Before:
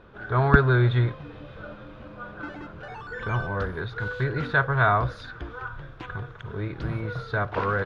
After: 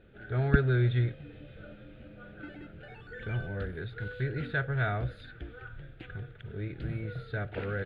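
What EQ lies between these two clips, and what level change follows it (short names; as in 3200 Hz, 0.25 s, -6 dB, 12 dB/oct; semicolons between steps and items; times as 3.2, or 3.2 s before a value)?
fixed phaser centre 2500 Hz, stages 4; -5.0 dB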